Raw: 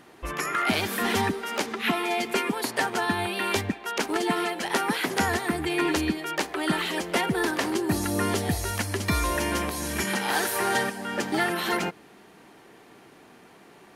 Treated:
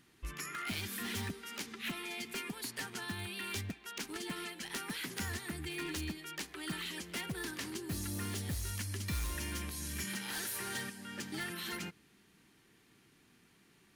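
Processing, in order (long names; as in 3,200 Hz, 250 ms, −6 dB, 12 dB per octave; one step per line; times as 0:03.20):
guitar amp tone stack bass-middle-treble 6-0-2
in parallel at −8.5 dB: wrap-around overflow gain 37.5 dB
on the sum: level +3.5 dB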